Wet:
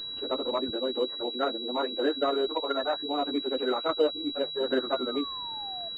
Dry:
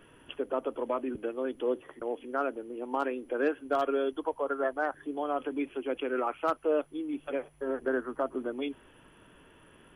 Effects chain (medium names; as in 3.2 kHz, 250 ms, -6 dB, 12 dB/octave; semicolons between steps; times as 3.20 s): plain phase-vocoder stretch 0.6×; painted sound fall, 4.91–5.89 s, 660–1500 Hz -48 dBFS; class-D stage that switches slowly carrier 3.9 kHz; trim +6 dB